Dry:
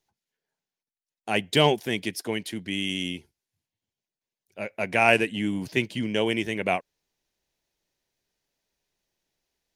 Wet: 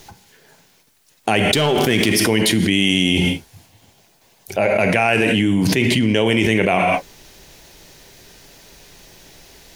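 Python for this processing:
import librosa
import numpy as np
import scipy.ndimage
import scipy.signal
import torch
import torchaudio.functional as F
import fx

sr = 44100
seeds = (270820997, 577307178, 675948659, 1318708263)

y = fx.low_shelf(x, sr, hz=230.0, db=3.5)
y = fx.leveller(y, sr, passes=2, at=(1.5, 2.14))
y = fx.peak_eq(y, sr, hz=760.0, db=7.5, octaves=0.74, at=(2.79, 4.7))
y = fx.rev_gated(y, sr, seeds[0], gate_ms=230, shape='falling', drr_db=9.5)
y = fx.env_flatten(y, sr, amount_pct=100)
y = y * librosa.db_to_amplitude(-5.0)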